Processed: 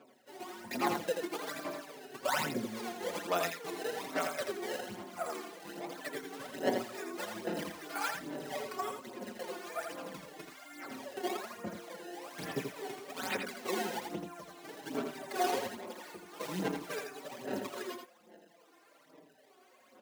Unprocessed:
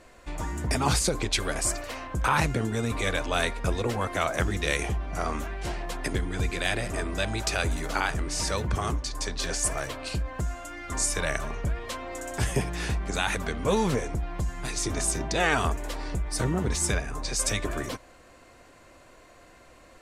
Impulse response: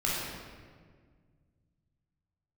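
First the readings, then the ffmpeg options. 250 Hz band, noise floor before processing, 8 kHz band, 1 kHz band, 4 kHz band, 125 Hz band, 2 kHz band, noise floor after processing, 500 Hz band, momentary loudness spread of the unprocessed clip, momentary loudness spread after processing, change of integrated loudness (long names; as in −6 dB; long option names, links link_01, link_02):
−8.0 dB, −53 dBFS, −16.5 dB, −7.0 dB, −11.0 dB, −21.0 dB, −10.5 dB, −64 dBFS, −6.0 dB, 9 LU, 12 LU, −10.0 dB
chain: -filter_complex "[0:a]aresample=11025,aresample=44100,acrusher=samples=22:mix=1:aa=0.000001:lfo=1:lforange=35.2:lforate=1.1,aphaser=in_gain=1:out_gain=1:delay=2.8:decay=0.69:speed=1.2:type=sinusoidal,highpass=frequency=210:width=0.5412,highpass=frequency=210:width=1.3066,asplit=2[link_01][link_02];[link_02]aecho=0:1:83:0.531[link_03];[link_01][link_03]amix=inputs=2:normalize=0,asplit=2[link_04][link_05];[link_05]adelay=4.8,afreqshift=-0.46[link_06];[link_04][link_06]amix=inputs=2:normalize=1,volume=-8.5dB"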